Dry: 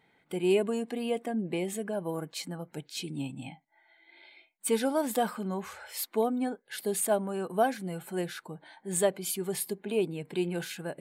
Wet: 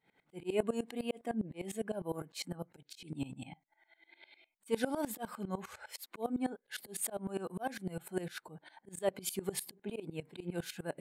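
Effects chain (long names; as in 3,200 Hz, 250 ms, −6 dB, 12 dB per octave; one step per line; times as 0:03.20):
volume swells 152 ms
tremolo with a ramp in dB swelling 9.9 Hz, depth 20 dB
level +1.5 dB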